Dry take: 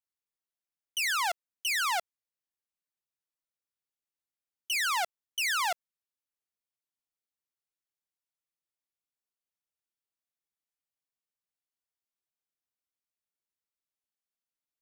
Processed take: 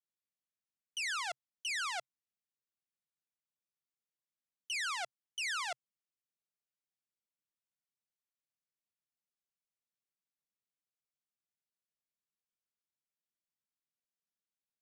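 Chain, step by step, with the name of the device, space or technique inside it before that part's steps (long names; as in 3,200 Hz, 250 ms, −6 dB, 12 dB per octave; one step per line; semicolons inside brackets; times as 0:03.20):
car door speaker (loudspeaker in its box 88–9,200 Hz, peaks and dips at 130 Hz +9 dB, 200 Hz +9 dB, 900 Hz −9 dB)
level −7 dB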